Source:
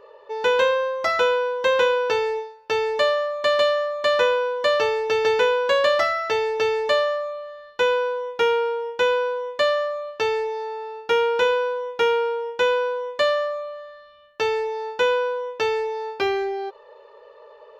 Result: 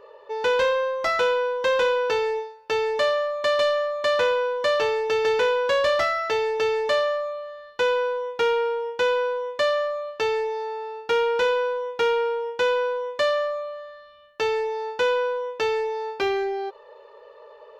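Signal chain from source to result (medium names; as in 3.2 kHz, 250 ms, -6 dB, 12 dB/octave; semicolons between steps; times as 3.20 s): saturation -15 dBFS, distortion -18 dB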